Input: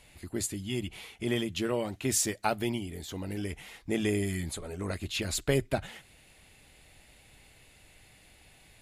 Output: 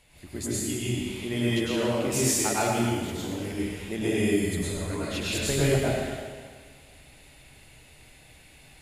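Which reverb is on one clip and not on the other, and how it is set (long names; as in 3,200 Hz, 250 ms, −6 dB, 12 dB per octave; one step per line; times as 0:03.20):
dense smooth reverb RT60 1.7 s, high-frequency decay 0.9×, pre-delay 90 ms, DRR −8 dB
level −3.5 dB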